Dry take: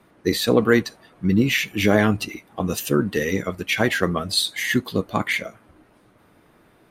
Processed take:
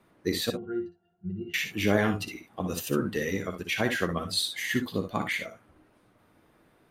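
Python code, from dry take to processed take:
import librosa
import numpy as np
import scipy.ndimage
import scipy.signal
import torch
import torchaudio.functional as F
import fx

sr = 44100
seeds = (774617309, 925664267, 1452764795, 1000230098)

p1 = fx.octave_resonator(x, sr, note='F', decay_s=0.2, at=(0.5, 1.54))
p2 = p1 + fx.room_early_taps(p1, sr, ms=(59, 71), db=(-8.5, -13.5), dry=0)
y = F.gain(torch.from_numpy(p2), -7.5).numpy()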